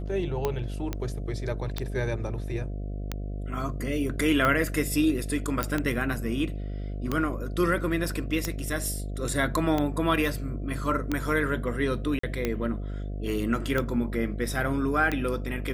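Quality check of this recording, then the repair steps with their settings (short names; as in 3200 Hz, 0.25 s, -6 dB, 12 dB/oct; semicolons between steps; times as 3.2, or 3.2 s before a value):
buzz 50 Hz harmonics 14 -33 dBFS
tick 45 rpm -13 dBFS
0.93 pop -16 dBFS
5.63 pop
12.19–12.23 gap 44 ms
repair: de-click; de-hum 50 Hz, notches 14; interpolate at 12.19, 44 ms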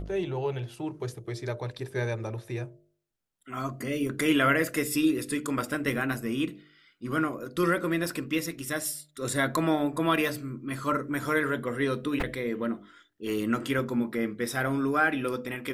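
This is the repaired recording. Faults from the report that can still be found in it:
none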